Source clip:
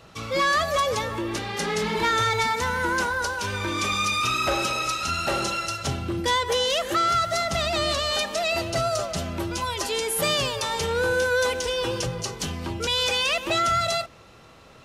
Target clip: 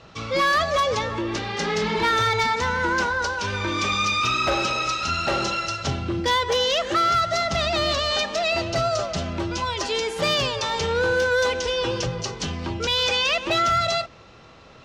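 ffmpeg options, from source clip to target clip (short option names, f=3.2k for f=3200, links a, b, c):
-af "lowpass=f=6.3k:w=0.5412,lowpass=f=6.3k:w=1.3066,volume=17dB,asoftclip=hard,volume=-17dB,volume=2dB"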